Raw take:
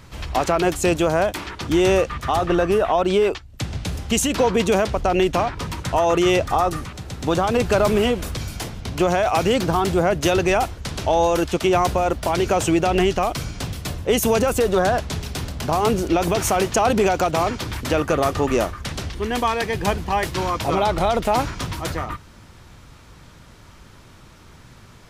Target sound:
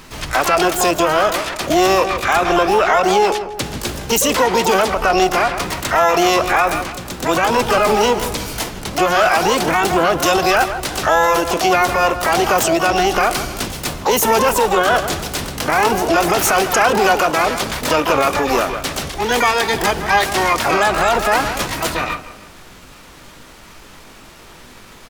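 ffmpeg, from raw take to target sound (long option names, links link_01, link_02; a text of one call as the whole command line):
ffmpeg -i in.wav -filter_complex "[0:a]asplit=2[link_01][link_02];[link_02]adelay=158,lowpass=frequency=1500:poles=1,volume=-12dB,asplit=2[link_03][link_04];[link_04]adelay=158,lowpass=frequency=1500:poles=1,volume=0.42,asplit=2[link_05][link_06];[link_06]adelay=158,lowpass=frequency=1500:poles=1,volume=0.42,asplit=2[link_07][link_08];[link_08]adelay=158,lowpass=frequency=1500:poles=1,volume=0.42[link_09];[link_01][link_03][link_05][link_07][link_09]amix=inputs=5:normalize=0,alimiter=limit=-12.5dB:level=0:latency=1:release=49,asplit=2[link_10][link_11];[link_11]asetrate=88200,aresample=44100,atempo=0.5,volume=-3dB[link_12];[link_10][link_12]amix=inputs=2:normalize=0,equalizer=frequency=96:width=0.48:gain=-12,volume=7dB" out.wav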